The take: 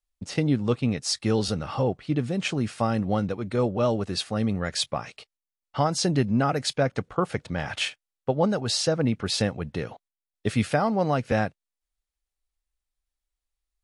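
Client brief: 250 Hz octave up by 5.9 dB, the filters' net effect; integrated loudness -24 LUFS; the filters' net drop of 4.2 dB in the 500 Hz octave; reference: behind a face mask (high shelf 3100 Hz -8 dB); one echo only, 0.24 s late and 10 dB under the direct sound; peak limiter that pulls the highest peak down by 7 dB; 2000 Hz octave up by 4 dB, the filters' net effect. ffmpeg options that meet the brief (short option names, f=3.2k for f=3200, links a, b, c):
-af "equalizer=f=250:t=o:g=9,equalizer=f=500:t=o:g=-8,equalizer=f=2k:t=o:g=8.5,alimiter=limit=-13.5dB:level=0:latency=1,highshelf=f=3.1k:g=-8,aecho=1:1:240:0.316,volume=1dB"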